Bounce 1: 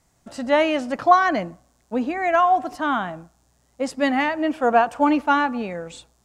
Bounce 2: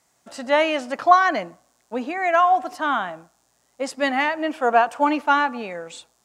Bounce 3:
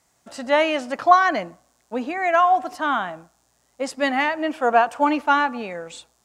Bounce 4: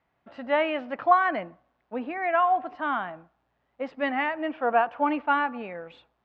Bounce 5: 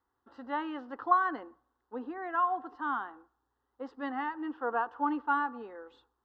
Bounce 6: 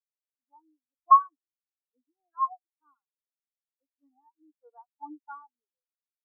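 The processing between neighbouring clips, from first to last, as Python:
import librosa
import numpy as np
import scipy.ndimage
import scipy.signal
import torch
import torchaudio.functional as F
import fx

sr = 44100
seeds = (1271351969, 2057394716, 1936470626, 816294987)

y1 = fx.highpass(x, sr, hz=540.0, slope=6)
y1 = y1 * librosa.db_to_amplitude(2.0)
y2 = fx.low_shelf(y1, sr, hz=78.0, db=10.5)
y3 = scipy.signal.sosfilt(scipy.signal.butter(4, 2900.0, 'lowpass', fs=sr, output='sos'), y2)
y3 = y3 * librosa.db_to_amplitude(-5.5)
y4 = fx.fixed_phaser(y3, sr, hz=630.0, stages=6)
y4 = y4 * librosa.db_to_amplitude(-3.5)
y5 = fx.spectral_expand(y4, sr, expansion=4.0)
y5 = y5 * librosa.db_to_amplitude(5.5)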